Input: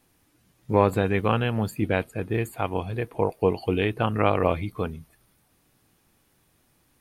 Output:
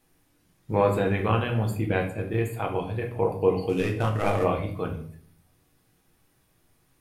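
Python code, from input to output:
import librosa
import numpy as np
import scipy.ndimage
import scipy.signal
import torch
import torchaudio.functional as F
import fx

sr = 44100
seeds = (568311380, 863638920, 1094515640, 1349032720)

y = fx.cvsd(x, sr, bps=64000, at=(3.69, 4.44))
y = fx.room_shoebox(y, sr, seeds[0], volume_m3=61.0, walls='mixed', distance_m=0.6)
y = y * librosa.db_to_amplitude(-4.0)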